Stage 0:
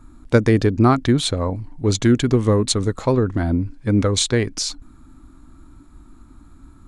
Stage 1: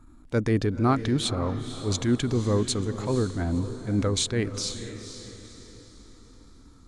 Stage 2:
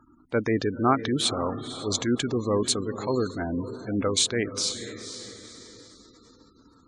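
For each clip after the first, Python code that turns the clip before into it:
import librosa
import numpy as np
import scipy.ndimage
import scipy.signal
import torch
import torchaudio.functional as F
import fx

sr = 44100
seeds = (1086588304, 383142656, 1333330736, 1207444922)

y1 = fx.transient(x, sr, attack_db=-7, sustain_db=0)
y1 = fx.echo_diffused(y1, sr, ms=502, feedback_pct=43, wet_db=-11)
y1 = y1 * 10.0 ** (-6.0 / 20.0)
y2 = fx.spec_gate(y1, sr, threshold_db=-30, keep='strong')
y2 = fx.highpass(y2, sr, hz=390.0, slope=6)
y2 = y2 * 10.0 ** (4.0 / 20.0)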